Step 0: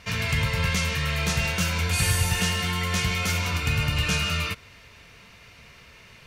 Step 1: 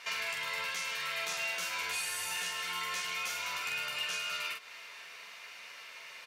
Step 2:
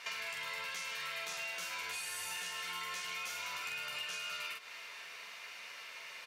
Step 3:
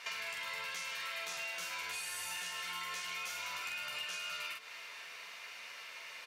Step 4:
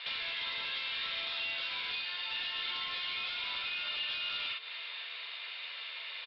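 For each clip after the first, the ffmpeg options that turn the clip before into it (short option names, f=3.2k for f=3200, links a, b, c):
-filter_complex "[0:a]highpass=720,acompressor=threshold=-36dB:ratio=12,asplit=2[a][b];[b]aecho=0:1:12|45:0.596|0.668[c];[a][c]amix=inputs=2:normalize=0"
-af "acompressor=threshold=-38dB:ratio=6"
-af "bandreject=f=50:t=h:w=6,bandreject=f=100:t=h:w=6,bandreject=f=150:t=h:w=6,bandreject=f=200:t=h:w=6,bandreject=f=250:t=h:w=6,bandreject=f=300:t=h:w=6,bandreject=f=350:t=h:w=6,bandreject=f=400:t=h:w=6,bandreject=f=450:t=h:w=6"
-af "highpass=f=330:w=0.5412,highpass=f=330:w=1.3066,aresample=11025,aeval=exprs='0.0126*(abs(mod(val(0)/0.0126+3,4)-2)-1)':c=same,aresample=44100,lowpass=f=3.6k:t=q:w=5"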